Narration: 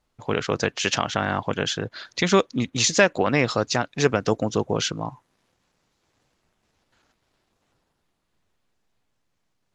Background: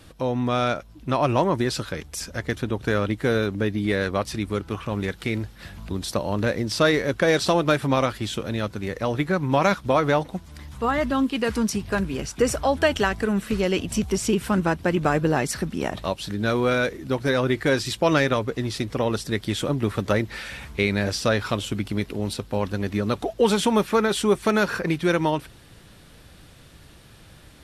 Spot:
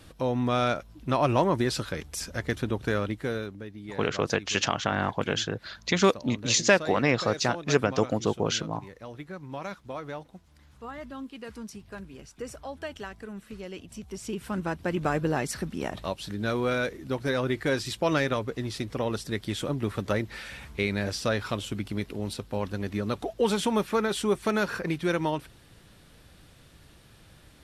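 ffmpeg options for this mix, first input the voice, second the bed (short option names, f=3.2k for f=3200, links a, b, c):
-filter_complex "[0:a]adelay=3700,volume=-3dB[a];[1:a]volume=9dB,afade=t=out:st=2.7:d=0.94:silence=0.188365,afade=t=in:st=14.02:d=1.07:silence=0.266073[b];[a][b]amix=inputs=2:normalize=0"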